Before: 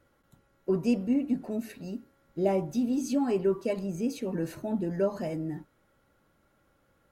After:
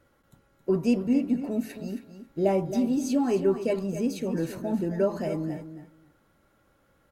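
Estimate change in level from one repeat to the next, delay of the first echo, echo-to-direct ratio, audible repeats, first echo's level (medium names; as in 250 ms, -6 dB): -16.5 dB, 270 ms, -11.0 dB, 2, -11.0 dB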